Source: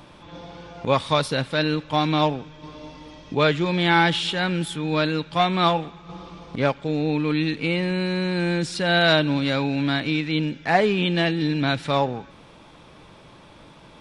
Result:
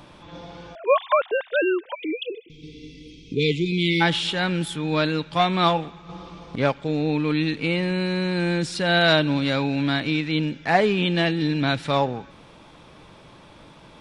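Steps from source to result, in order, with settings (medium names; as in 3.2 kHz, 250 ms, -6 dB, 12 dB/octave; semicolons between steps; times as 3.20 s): 0.75–2.50 s: formants replaced by sine waves; 1.94–4.01 s: spectral selection erased 500–2000 Hz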